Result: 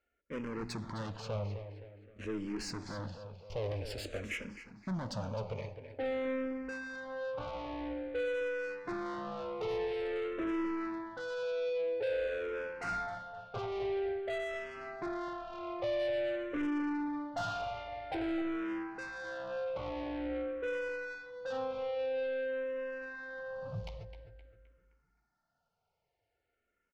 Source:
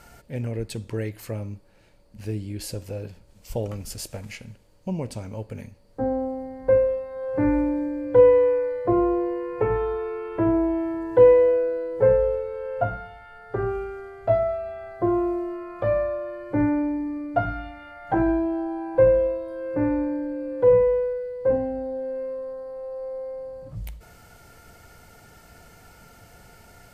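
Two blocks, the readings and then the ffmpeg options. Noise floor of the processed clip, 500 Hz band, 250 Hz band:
-83 dBFS, -14.5 dB, -12.5 dB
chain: -filter_complex "[0:a]agate=range=0.0178:threshold=0.00794:ratio=16:detection=peak,lowpass=f=6300:w=0.5412,lowpass=f=6300:w=1.3066,bass=f=250:g=-8,treble=f=4000:g=-6,areverse,acompressor=threshold=0.0355:ratio=5,areverse,asoftclip=type=tanh:threshold=0.0119,asplit=2[s0][s1];[s1]adelay=260,lowpass=f=4400:p=1,volume=0.316,asplit=2[s2][s3];[s3]adelay=260,lowpass=f=4400:p=1,volume=0.45,asplit=2[s4][s5];[s5]adelay=260,lowpass=f=4400:p=1,volume=0.45,asplit=2[s6][s7];[s7]adelay=260,lowpass=f=4400:p=1,volume=0.45,asplit=2[s8][s9];[s9]adelay=260,lowpass=f=4400:p=1,volume=0.45[s10];[s2][s4][s6][s8][s10]amix=inputs=5:normalize=0[s11];[s0][s11]amix=inputs=2:normalize=0,asplit=2[s12][s13];[s13]afreqshift=-0.49[s14];[s12][s14]amix=inputs=2:normalize=1,volume=2.24"

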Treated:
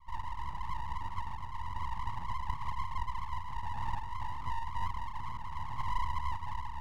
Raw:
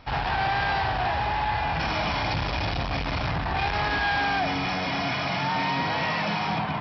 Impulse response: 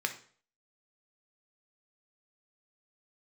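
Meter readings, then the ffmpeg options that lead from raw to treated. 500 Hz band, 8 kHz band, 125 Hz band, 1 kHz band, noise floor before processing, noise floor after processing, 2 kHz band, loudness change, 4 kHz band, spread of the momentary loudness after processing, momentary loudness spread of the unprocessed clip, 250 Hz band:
-32.5 dB, no reading, -12.0 dB, -11.5 dB, -29 dBFS, -40 dBFS, -22.0 dB, -14.0 dB, -22.5 dB, 5 LU, 4 LU, -22.5 dB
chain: -af "asuperpass=centerf=480:order=8:qfactor=4,aeval=exprs='abs(val(0))':c=same,volume=3.98"

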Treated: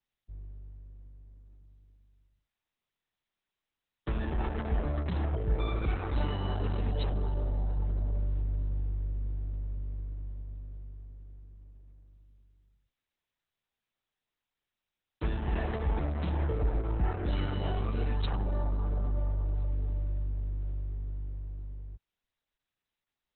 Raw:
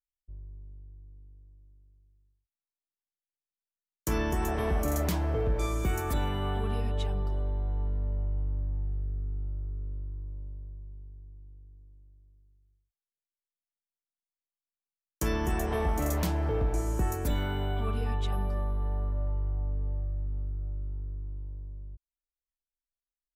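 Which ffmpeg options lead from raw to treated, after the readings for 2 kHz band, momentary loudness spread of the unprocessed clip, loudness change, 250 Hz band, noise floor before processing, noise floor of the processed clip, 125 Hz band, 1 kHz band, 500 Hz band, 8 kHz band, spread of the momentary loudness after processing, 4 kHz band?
-4.5 dB, 17 LU, -1.5 dB, -3.0 dB, under -85 dBFS, under -85 dBFS, -0.5 dB, -4.0 dB, -4.5 dB, under -35 dB, 16 LU, -3.0 dB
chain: -filter_complex "[0:a]acrossover=split=160[s0][s1];[s1]acompressor=threshold=0.0224:ratio=8[s2];[s0][s2]amix=inputs=2:normalize=0" -ar 48000 -c:a libopus -b:a 6k

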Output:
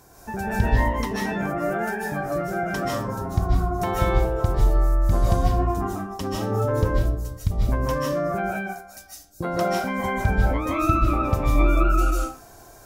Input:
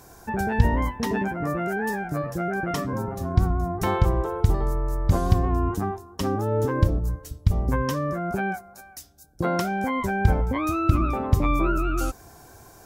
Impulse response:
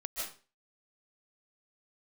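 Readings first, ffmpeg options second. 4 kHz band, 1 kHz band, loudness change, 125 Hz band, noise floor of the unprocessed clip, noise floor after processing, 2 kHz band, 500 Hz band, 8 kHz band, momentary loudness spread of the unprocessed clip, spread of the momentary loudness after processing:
+2.0 dB, +1.5 dB, +1.0 dB, 0.0 dB, -50 dBFS, -47 dBFS, +1.5 dB, +2.0 dB, +2.0 dB, 7 LU, 8 LU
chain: -filter_complex "[1:a]atrim=start_sample=2205[s0];[0:a][s0]afir=irnorm=-1:irlink=0"

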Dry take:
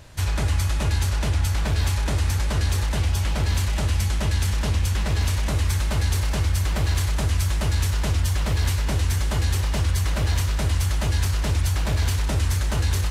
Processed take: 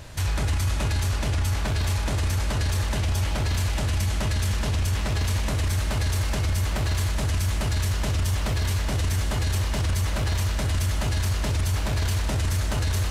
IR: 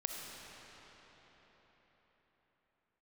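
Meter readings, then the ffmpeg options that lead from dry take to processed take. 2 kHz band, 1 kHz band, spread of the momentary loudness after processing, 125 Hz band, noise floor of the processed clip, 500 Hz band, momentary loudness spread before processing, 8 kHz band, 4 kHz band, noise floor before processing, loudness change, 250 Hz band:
-1.0 dB, -0.5 dB, 0 LU, -2.0 dB, -26 dBFS, -0.5 dB, 0 LU, -1.5 dB, -1.0 dB, -24 dBFS, -2.0 dB, -1.0 dB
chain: -filter_complex "[0:a]alimiter=limit=0.075:level=0:latency=1:release=13,asplit=2[s0][s1];[1:a]atrim=start_sample=2205[s2];[s1][s2]afir=irnorm=-1:irlink=0,volume=0.794[s3];[s0][s3]amix=inputs=2:normalize=0"

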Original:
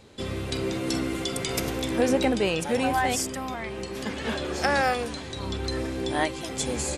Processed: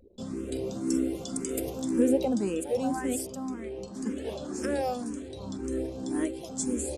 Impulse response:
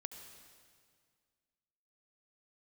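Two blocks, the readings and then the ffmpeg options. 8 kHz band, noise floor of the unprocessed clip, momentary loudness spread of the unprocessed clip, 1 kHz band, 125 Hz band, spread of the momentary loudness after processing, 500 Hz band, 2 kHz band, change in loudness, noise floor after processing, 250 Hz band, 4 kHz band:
-4.0 dB, -37 dBFS, 10 LU, -10.5 dB, -8.0 dB, 11 LU, -3.5 dB, -15.5 dB, -4.0 dB, -42 dBFS, +0.5 dB, -14.5 dB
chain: -filter_complex "[0:a]anlmdn=0.158,acompressor=mode=upward:threshold=0.01:ratio=2.5,equalizer=f=125:t=o:w=1:g=-5,equalizer=f=250:t=o:w=1:g=10,equalizer=f=500:t=o:w=1:g=3,equalizer=f=1000:t=o:w=1:g=-4,equalizer=f=2000:t=o:w=1:g=-9,equalizer=f=4000:t=o:w=1:g=-7,equalizer=f=8000:t=o:w=1:g=7,asplit=2[s0][s1];[s1]afreqshift=1.9[s2];[s0][s2]amix=inputs=2:normalize=1,volume=0.596"

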